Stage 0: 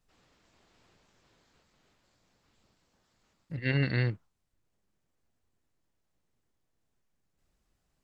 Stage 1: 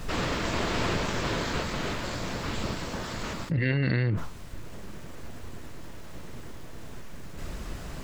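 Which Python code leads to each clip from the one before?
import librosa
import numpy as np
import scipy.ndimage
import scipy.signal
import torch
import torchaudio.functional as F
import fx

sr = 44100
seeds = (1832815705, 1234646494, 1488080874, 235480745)

y = fx.high_shelf(x, sr, hz=3800.0, db=-8.5)
y = fx.notch(y, sr, hz=780.0, q=12.0)
y = fx.env_flatten(y, sr, amount_pct=100)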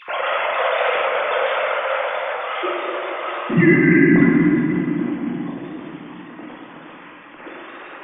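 y = fx.sine_speech(x, sr)
y = fx.doubler(y, sr, ms=45.0, db=-13.5)
y = fx.room_shoebox(y, sr, seeds[0], volume_m3=200.0, walls='hard', distance_m=0.88)
y = y * librosa.db_to_amplitude(3.5)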